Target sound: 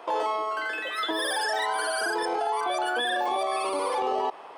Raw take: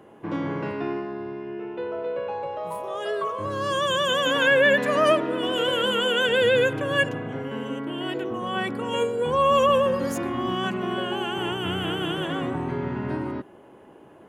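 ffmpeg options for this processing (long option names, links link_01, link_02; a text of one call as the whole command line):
ffmpeg -i in.wav -af "equalizer=frequency=125:width_type=o:width=1:gain=9,equalizer=frequency=250:width_type=o:width=1:gain=11,equalizer=frequency=500:width_type=o:width=1:gain=-5,equalizer=frequency=2000:width_type=o:width=1:gain=-7,equalizer=frequency=4000:width_type=o:width=1:gain=-4,alimiter=limit=-19.5dB:level=0:latency=1:release=137,asetrate=137592,aresample=44100" out.wav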